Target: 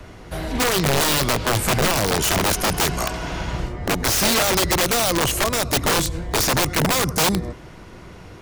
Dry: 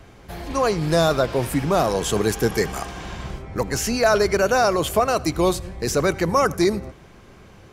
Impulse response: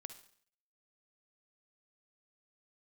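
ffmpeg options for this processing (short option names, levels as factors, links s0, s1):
-filter_complex "[0:a]acrossover=split=260|3000[s0][s1][s2];[s1]acompressor=threshold=0.0562:ratio=5[s3];[s0][s3][s2]amix=inputs=3:normalize=0,asetrate=40517,aresample=44100,aeval=exprs='(mod(8.91*val(0)+1,2)-1)/8.91':c=same,volume=2"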